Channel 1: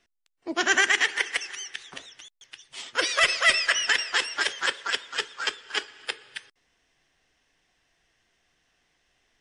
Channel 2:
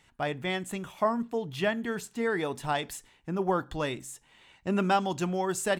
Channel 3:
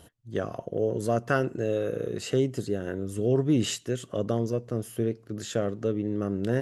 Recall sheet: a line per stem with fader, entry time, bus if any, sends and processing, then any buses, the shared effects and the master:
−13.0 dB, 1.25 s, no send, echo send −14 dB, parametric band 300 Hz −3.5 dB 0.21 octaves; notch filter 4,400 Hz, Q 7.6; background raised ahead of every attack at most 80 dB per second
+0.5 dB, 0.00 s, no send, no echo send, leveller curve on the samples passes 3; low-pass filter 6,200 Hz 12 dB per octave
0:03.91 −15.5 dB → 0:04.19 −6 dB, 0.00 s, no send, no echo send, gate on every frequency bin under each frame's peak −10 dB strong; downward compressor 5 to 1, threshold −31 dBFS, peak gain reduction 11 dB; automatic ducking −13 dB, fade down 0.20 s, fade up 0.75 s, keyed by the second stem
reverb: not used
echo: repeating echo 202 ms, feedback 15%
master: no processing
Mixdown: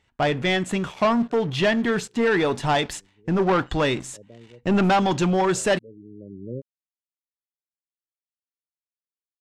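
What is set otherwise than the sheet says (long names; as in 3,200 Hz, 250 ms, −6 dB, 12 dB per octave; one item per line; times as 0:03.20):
stem 1: muted
stem 3: missing downward compressor 5 to 1, threshold −31 dBFS, peak gain reduction 11 dB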